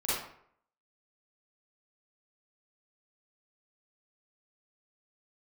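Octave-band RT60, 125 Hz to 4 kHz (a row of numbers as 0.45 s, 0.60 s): 0.60 s, 0.60 s, 0.65 s, 0.65 s, 0.55 s, 0.40 s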